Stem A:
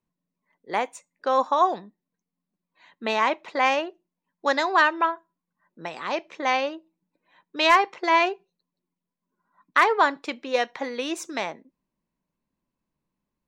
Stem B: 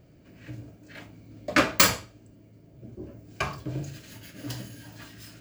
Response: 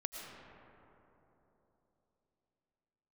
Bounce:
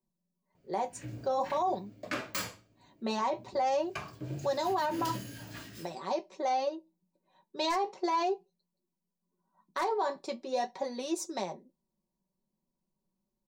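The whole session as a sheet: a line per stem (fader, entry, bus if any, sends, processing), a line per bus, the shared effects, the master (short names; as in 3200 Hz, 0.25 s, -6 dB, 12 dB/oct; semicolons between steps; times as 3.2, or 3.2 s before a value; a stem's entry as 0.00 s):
0.0 dB, 0.00 s, no send, band shelf 2000 Hz -13.5 dB; comb 5.3 ms, depth 77%
2.33 s -8.5 dB -> 3.1 s -18.5 dB -> 3.91 s -18.5 dB -> 4.71 s -9 dB, 0.55 s, no send, AGC gain up to 14 dB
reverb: off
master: bell 74 Hz -11.5 dB 0.49 oct; flange 0.45 Hz, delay 8.1 ms, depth 8.1 ms, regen -51%; limiter -22.5 dBFS, peak gain reduction 9.5 dB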